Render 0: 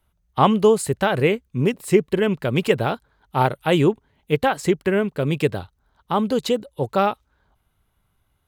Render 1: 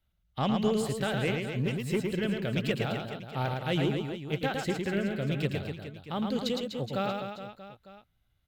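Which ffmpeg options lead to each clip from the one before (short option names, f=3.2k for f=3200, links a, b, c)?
-filter_complex "[0:a]equalizer=f=400:t=o:w=0.67:g=-6,equalizer=f=1k:t=o:w=0.67:g=-10,equalizer=f=4k:t=o:w=0.67:g=4,equalizer=f=10k:t=o:w=0.67:g=-9,asoftclip=type=tanh:threshold=-11.5dB,asplit=2[a][b];[b]aecho=0:1:110|247.5|419.4|634.2|902.8:0.631|0.398|0.251|0.158|0.1[c];[a][c]amix=inputs=2:normalize=0,volume=-8dB"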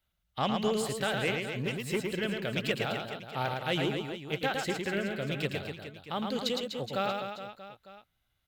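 -af "lowshelf=f=350:g=-9.5,volume=2.5dB"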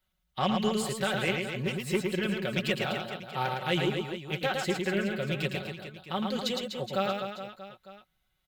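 -af "aecho=1:1:5.4:0.65"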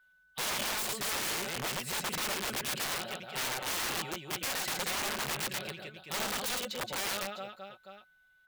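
-af "aeval=exprs='(mod(25.1*val(0)+1,2)-1)/25.1':c=same,aeval=exprs='val(0)+0.000708*sin(2*PI*1500*n/s)':c=same,lowshelf=f=330:g=-8"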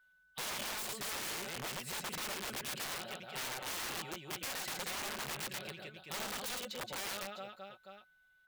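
-af "acompressor=threshold=-40dB:ratio=1.5,volume=-3dB"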